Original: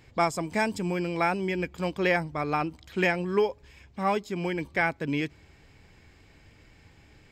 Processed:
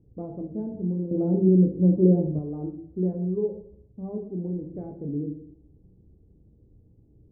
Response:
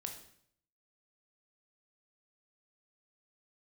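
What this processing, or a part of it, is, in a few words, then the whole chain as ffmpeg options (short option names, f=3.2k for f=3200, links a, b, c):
next room: -filter_complex "[0:a]lowpass=f=430:w=0.5412,lowpass=f=430:w=1.3066[a];[1:a]atrim=start_sample=2205[b];[a][b]afir=irnorm=-1:irlink=0,asettb=1/sr,asplit=3[c][d][e];[c]atrim=end=1.114[f];[d]atrim=start=1.11:end=2.39,asetpts=PTS-STARTPTS,afade=t=in:d=0.004:c=qsin,afade=t=out:st=1.276:d=0.004:c=qsin,equalizer=f=125:t=o:w=1:g=7,equalizer=f=250:t=o:w=1:g=11,equalizer=f=500:t=o:w=1:g=6,equalizer=f=4k:t=o:w=1:g=-10[g];[e]atrim=start=2.386[h];[f][g]acrossfade=d=0.004:c1=hsin:c2=qsin[i];[i][h]acrossfade=d=0.004:c1=qsin:c2=hsin,volume=2dB"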